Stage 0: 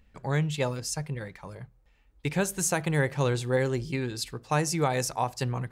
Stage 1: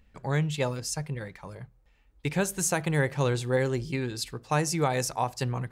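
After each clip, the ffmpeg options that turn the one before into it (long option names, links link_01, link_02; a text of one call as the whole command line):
ffmpeg -i in.wav -af anull out.wav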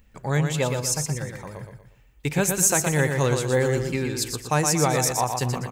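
ffmpeg -i in.wav -af "aexciter=amount=2.1:drive=4.7:freq=6100,aecho=1:1:119|238|357|476:0.531|0.196|0.0727|0.0269,volume=3.5dB" out.wav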